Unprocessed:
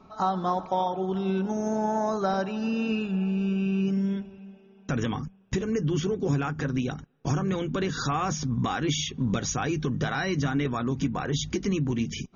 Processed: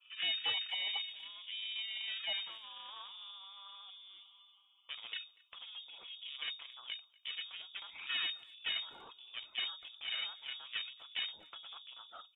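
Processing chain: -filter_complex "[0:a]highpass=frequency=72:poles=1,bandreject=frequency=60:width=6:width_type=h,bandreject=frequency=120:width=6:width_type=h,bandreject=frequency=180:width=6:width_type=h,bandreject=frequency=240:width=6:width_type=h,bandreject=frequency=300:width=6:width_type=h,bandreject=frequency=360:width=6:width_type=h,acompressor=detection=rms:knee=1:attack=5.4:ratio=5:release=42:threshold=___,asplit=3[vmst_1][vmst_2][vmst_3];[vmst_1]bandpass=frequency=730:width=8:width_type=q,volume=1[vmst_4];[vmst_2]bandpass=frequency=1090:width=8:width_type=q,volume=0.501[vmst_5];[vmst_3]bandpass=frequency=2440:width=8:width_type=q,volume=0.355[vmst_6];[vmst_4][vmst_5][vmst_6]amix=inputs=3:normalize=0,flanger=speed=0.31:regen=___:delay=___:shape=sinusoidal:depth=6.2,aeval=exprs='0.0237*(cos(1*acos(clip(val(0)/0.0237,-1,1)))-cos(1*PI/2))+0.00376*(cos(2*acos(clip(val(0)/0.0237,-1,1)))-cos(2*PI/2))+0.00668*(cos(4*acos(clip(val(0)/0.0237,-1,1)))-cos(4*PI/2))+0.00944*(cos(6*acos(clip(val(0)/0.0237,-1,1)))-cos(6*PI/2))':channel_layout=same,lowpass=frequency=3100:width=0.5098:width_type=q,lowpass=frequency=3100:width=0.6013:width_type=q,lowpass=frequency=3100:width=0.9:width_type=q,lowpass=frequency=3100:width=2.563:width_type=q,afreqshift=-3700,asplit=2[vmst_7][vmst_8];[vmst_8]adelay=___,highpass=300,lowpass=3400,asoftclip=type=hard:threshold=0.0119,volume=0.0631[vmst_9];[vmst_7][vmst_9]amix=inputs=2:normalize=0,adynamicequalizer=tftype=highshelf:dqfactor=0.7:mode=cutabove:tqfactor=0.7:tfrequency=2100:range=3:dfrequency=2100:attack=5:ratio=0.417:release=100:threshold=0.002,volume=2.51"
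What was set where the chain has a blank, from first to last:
0.0224, 80, 0.1, 240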